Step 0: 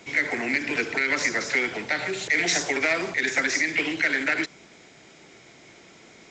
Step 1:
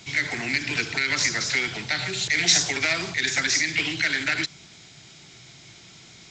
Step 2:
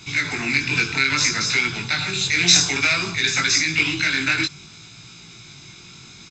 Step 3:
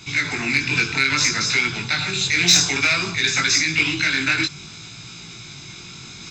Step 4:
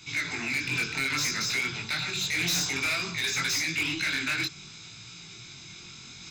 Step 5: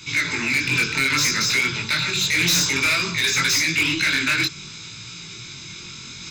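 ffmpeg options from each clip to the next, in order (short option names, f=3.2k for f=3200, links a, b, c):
-af "equalizer=f=125:t=o:w=1:g=7,equalizer=f=250:t=o:w=1:g=-7,equalizer=f=500:t=o:w=1:g=-12,equalizer=f=1k:t=o:w=1:g=-4,equalizer=f=2k:t=o:w=1:g=-6,equalizer=f=4k:t=o:w=1:g=5,volume=5dB"
-af "aecho=1:1:0.8:0.53,flanger=delay=17:depth=5.8:speed=0.59,volume=6.5dB"
-af "areverse,acompressor=mode=upward:threshold=-32dB:ratio=2.5,areverse,aeval=exprs='0.891*(cos(1*acos(clip(val(0)/0.891,-1,1)))-cos(1*PI/2))+0.0631*(cos(5*acos(clip(val(0)/0.891,-1,1)))-cos(5*PI/2))+0.0158*(cos(7*acos(clip(val(0)/0.891,-1,1)))-cos(7*PI/2))':c=same,volume=-1dB"
-filter_complex "[0:a]acrossover=split=1500[a][b];[a]flanger=delay=22.5:depth=5.3:speed=2.9[c];[b]volume=19dB,asoftclip=hard,volume=-19dB[d];[c][d]amix=inputs=2:normalize=0,volume=-6.5dB"
-af "asuperstop=centerf=740:order=4:qfactor=4.3,volume=8.5dB"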